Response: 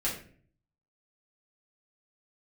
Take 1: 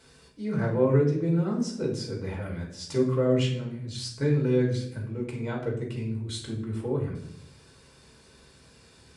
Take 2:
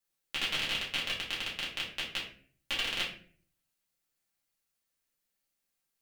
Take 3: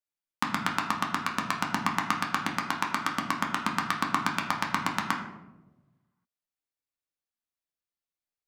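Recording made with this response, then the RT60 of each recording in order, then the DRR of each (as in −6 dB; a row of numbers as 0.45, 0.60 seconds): 2; 0.70, 0.50, 1.1 seconds; −2.5, −7.0, −0.5 decibels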